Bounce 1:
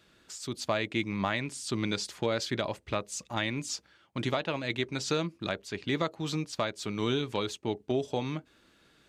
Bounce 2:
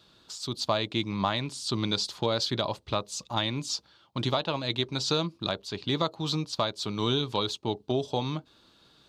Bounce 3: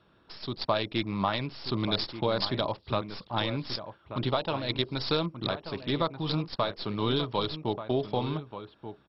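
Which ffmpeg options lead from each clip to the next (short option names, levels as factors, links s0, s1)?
-af "equalizer=f=125:t=o:w=1:g=4,equalizer=f=1000:t=o:w=1:g=7,equalizer=f=2000:t=o:w=1:g=-9,equalizer=f=4000:t=o:w=1:g=11,equalizer=f=8000:t=o:w=1:g=-3"
-filter_complex "[0:a]acrossover=split=2600[s0][s1];[s0]aecho=1:1:1184:0.282[s2];[s1]acrusher=bits=5:dc=4:mix=0:aa=0.000001[s3];[s2][s3]amix=inputs=2:normalize=0" -ar 22050 -c:a mp2 -b:a 32k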